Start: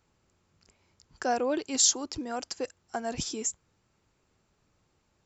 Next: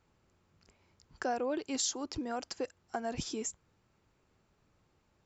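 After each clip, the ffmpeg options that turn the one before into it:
ffmpeg -i in.wav -af "lowpass=frequency=3800:poles=1,acompressor=threshold=-34dB:ratio=2" out.wav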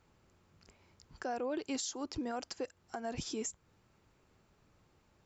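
ffmpeg -i in.wav -af "alimiter=level_in=7.5dB:limit=-24dB:level=0:latency=1:release=266,volume=-7.5dB,volume=3dB" out.wav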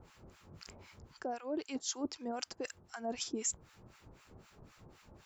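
ffmpeg -i in.wav -filter_complex "[0:a]areverse,acompressor=threshold=-46dB:ratio=12,areverse,acrossover=split=1000[link_01][link_02];[link_01]aeval=exprs='val(0)*(1-1/2+1/2*cos(2*PI*3.9*n/s))':channel_layout=same[link_03];[link_02]aeval=exprs='val(0)*(1-1/2-1/2*cos(2*PI*3.9*n/s))':channel_layout=same[link_04];[link_03][link_04]amix=inputs=2:normalize=0,volume=14.5dB" out.wav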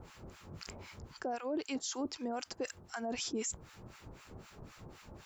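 ffmpeg -i in.wav -af "alimiter=level_in=11dB:limit=-24dB:level=0:latency=1:release=23,volume=-11dB,volume=6dB" out.wav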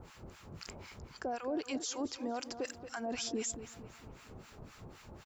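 ffmpeg -i in.wav -filter_complex "[0:a]asplit=2[link_01][link_02];[link_02]adelay=228,lowpass=frequency=3700:poles=1,volume=-11dB,asplit=2[link_03][link_04];[link_04]adelay=228,lowpass=frequency=3700:poles=1,volume=0.47,asplit=2[link_05][link_06];[link_06]adelay=228,lowpass=frequency=3700:poles=1,volume=0.47,asplit=2[link_07][link_08];[link_08]adelay=228,lowpass=frequency=3700:poles=1,volume=0.47,asplit=2[link_09][link_10];[link_10]adelay=228,lowpass=frequency=3700:poles=1,volume=0.47[link_11];[link_01][link_03][link_05][link_07][link_09][link_11]amix=inputs=6:normalize=0" out.wav

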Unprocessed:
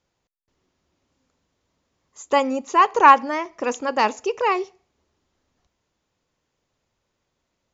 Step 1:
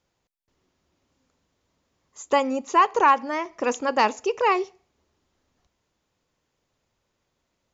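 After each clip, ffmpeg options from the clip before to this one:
ffmpeg -i in.wav -af "alimiter=limit=-8.5dB:level=0:latency=1:release=419" out.wav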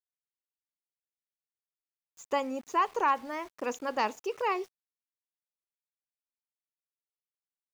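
ffmpeg -i in.wav -af "aeval=exprs='val(0)*gte(abs(val(0)),0.00944)':channel_layout=same,volume=-9dB" out.wav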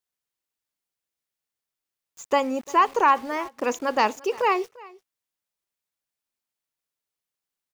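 ffmpeg -i in.wav -af "aecho=1:1:346:0.075,volume=8dB" out.wav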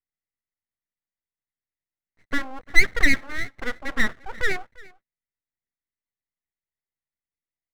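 ffmpeg -i in.wav -af "lowpass=frequency=1000:width_type=q:width=8.5,aeval=exprs='abs(val(0))':channel_layout=same,volume=-8.5dB" out.wav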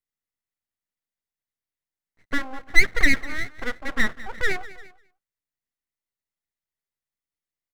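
ffmpeg -i in.wav -af "aecho=1:1:199:0.126" out.wav

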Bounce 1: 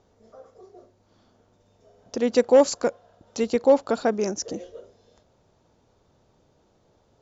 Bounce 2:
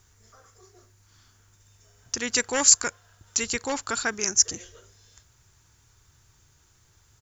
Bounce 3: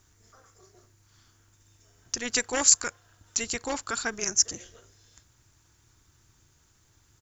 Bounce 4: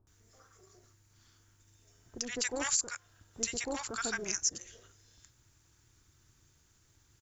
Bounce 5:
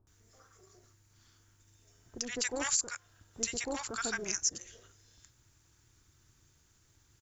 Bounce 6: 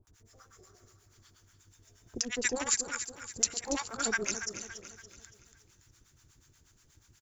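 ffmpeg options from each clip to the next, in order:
ffmpeg -i in.wav -af "firequalizer=gain_entry='entry(110,0);entry(200,-17);entry(370,-14);entry(550,-23);entry(970,-8);entry(1600,2);entry(3800,-1);entry(8200,15)':delay=0.05:min_phase=1,volume=6.5dB" out.wav
ffmpeg -i in.wav -af "tremolo=f=230:d=0.571" out.wav
ffmpeg -i in.wav -filter_complex "[0:a]acrossover=split=880[link_01][link_02];[link_02]adelay=70[link_03];[link_01][link_03]amix=inputs=2:normalize=0,alimiter=limit=-14dB:level=0:latency=1:release=320,volume=-3.5dB" out.wav
ffmpeg -i in.wav -af anull out.wav
ffmpeg -i in.wav -filter_complex "[0:a]acrossover=split=710[link_01][link_02];[link_01]aeval=exprs='val(0)*(1-1/2+1/2*cos(2*PI*8.3*n/s))':channel_layout=same[link_03];[link_02]aeval=exprs='val(0)*(1-1/2-1/2*cos(2*PI*8.3*n/s))':channel_layout=same[link_04];[link_03][link_04]amix=inputs=2:normalize=0,aecho=1:1:283|566|849|1132|1415:0.299|0.134|0.0605|0.0272|0.0122,volume=7dB" out.wav

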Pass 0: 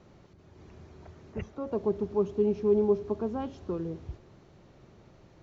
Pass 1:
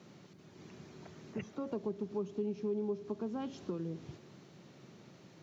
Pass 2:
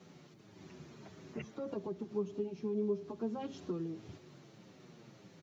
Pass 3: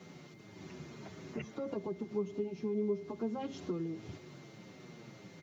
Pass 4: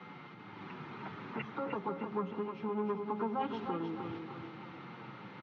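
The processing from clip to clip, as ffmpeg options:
ffmpeg -i in.wav -af "highpass=frequency=150:width=0.5412,highpass=frequency=150:width=1.3066,equalizer=frequency=670:width=0.4:gain=-9,acompressor=threshold=-43dB:ratio=3,volume=6.5dB" out.wav
ffmpeg -i in.wav -filter_complex "[0:a]asplit=2[link_01][link_02];[link_02]adelay=7.5,afreqshift=-1.7[link_03];[link_01][link_03]amix=inputs=2:normalize=1,volume=2.5dB" out.wav
ffmpeg -i in.wav -filter_complex "[0:a]asplit=2[link_01][link_02];[link_02]acompressor=threshold=-45dB:ratio=6,volume=-1dB[link_03];[link_01][link_03]amix=inputs=2:normalize=0,aeval=exprs='val(0)+0.000708*sin(2*PI*2100*n/s)':channel_layout=same,volume=-1dB" out.wav
ffmpeg -i in.wav -filter_complex "[0:a]acrossover=split=480[link_01][link_02];[link_01]asoftclip=type=tanh:threshold=-35.5dB[link_03];[link_03][link_02]amix=inputs=2:normalize=0,highpass=frequency=120:width=0.5412,highpass=frequency=120:width=1.3066,equalizer=frequency=160:width_type=q:width=4:gain=-7,equalizer=frequency=250:width_type=q:width=4:gain=-4,equalizer=frequency=380:width_type=q:width=4:gain=-7,equalizer=frequency=620:width_type=q:width=4:gain=-10,equalizer=frequency=890:width_type=q:width=4:gain=8,equalizer=frequency=1300:width_type=q:width=4:gain=8,lowpass=frequency=3200:width=0.5412,lowpass=frequency=3200:width=1.3066,aecho=1:1:306|612|918|1224|1530|1836:0.501|0.231|0.106|0.0488|0.0224|0.0103,volume=5.5dB" out.wav

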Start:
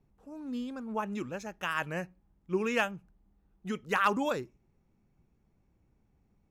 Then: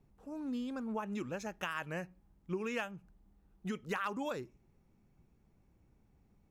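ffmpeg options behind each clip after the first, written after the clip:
ffmpeg -i in.wav -af "acompressor=threshold=-37dB:ratio=4,volume=1.5dB" out.wav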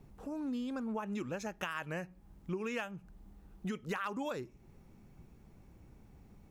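ffmpeg -i in.wav -af "acompressor=threshold=-54dB:ratio=2,volume=10.5dB" out.wav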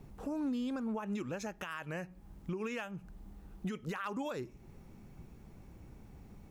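ffmpeg -i in.wav -af "alimiter=level_in=10dB:limit=-24dB:level=0:latency=1:release=187,volume=-10dB,volume=4.5dB" out.wav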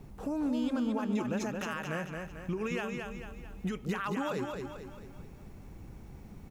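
ffmpeg -i in.wav -af "aecho=1:1:222|444|666|888|1110|1332:0.596|0.274|0.126|0.058|0.0267|0.0123,volume=3.5dB" out.wav

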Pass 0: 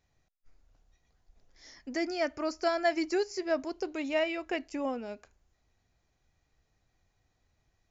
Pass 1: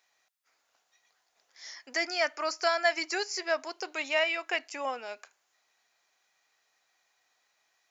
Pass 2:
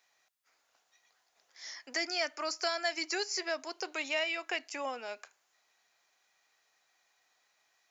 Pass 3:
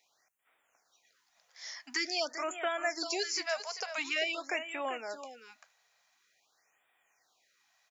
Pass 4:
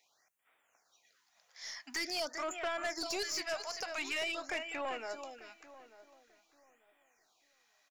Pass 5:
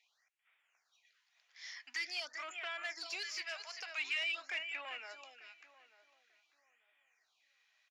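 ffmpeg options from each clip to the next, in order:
ffmpeg -i in.wav -filter_complex "[0:a]highpass=930,asplit=2[link_01][link_02];[link_02]alimiter=level_in=3dB:limit=-24dB:level=0:latency=1:release=434,volume=-3dB,volume=-2dB[link_03];[link_01][link_03]amix=inputs=2:normalize=0,volume=3.5dB" out.wav
ffmpeg -i in.wav -filter_complex "[0:a]acrossover=split=380|3000[link_01][link_02][link_03];[link_02]acompressor=threshold=-37dB:ratio=2.5[link_04];[link_01][link_04][link_03]amix=inputs=3:normalize=0" out.wav
ffmpeg -i in.wav -af "aecho=1:1:391:0.316,afftfilt=real='re*(1-between(b*sr/1024,280*pow(5300/280,0.5+0.5*sin(2*PI*0.47*pts/sr))/1.41,280*pow(5300/280,0.5+0.5*sin(2*PI*0.47*pts/sr))*1.41))':imag='im*(1-between(b*sr/1024,280*pow(5300/280,0.5+0.5*sin(2*PI*0.47*pts/sr))/1.41,280*pow(5300/280,0.5+0.5*sin(2*PI*0.47*pts/sr))*1.41))':win_size=1024:overlap=0.75,volume=1dB" out.wav
ffmpeg -i in.wav -filter_complex "[0:a]aeval=exprs='(tanh(35.5*val(0)+0.2)-tanh(0.2))/35.5':channel_layout=same,asplit=2[link_01][link_02];[link_02]adelay=891,lowpass=frequency=1400:poles=1,volume=-16dB,asplit=2[link_03][link_04];[link_04]adelay=891,lowpass=frequency=1400:poles=1,volume=0.26,asplit=2[link_05][link_06];[link_06]adelay=891,lowpass=frequency=1400:poles=1,volume=0.26[link_07];[link_01][link_03][link_05][link_07]amix=inputs=4:normalize=0" out.wav
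ffmpeg -i in.wav -af "bandpass=frequency=2600:width_type=q:width=1.5:csg=0,volume=2dB" out.wav

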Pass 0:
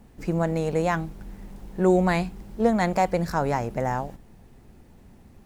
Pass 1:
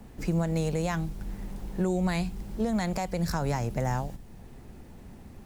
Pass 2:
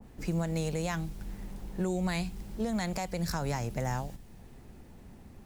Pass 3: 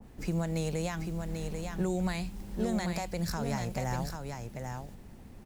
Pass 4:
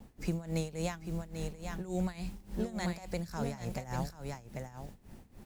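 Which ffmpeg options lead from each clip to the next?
ffmpeg -i in.wav -filter_complex "[0:a]alimiter=limit=-15.5dB:level=0:latency=1:release=136,acrossover=split=170|3000[link_01][link_02][link_03];[link_02]acompressor=threshold=-50dB:ratio=1.5[link_04];[link_01][link_04][link_03]amix=inputs=3:normalize=0,volume=4dB" out.wav
ffmpeg -i in.wav -af "adynamicequalizer=threshold=0.00398:dfrequency=1700:dqfactor=0.7:tfrequency=1700:tqfactor=0.7:attack=5:release=100:ratio=0.375:range=2:mode=boostabove:tftype=highshelf,volume=-4dB" out.wav
ffmpeg -i in.wav -af "alimiter=limit=-22dB:level=0:latency=1:release=456,aecho=1:1:790:0.531" out.wav
ffmpeg -i in.wav -af "acrusher=bits=10:mix=0:aa=0.000001,tremolo=f=3.5:d=0.84" out.wav

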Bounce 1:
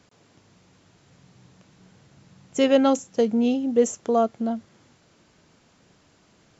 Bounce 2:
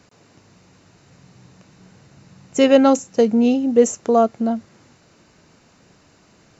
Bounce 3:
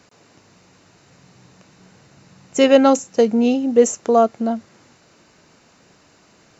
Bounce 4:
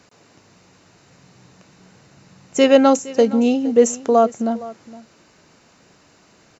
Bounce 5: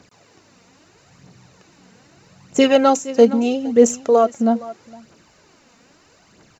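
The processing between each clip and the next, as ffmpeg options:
ffmpeg -i in.wav -af "bandreject=frequency=3300:width=8.1,volume=5.5dB" out.wav
ffmpeg -i in.wav -af "lowshelf=frequency=210:gain=-7,volume=2dB" out.wav
ffmpeg -i in.wav -af "aecho=1:1:464:0.119" out.wav
ffmpeg -i in.wav -af "aphaser=in_gain=1:out_gain=1:delay=4.5:decay=0.5:speed=0.78:type=triangular,volume=-1dB" out.wav

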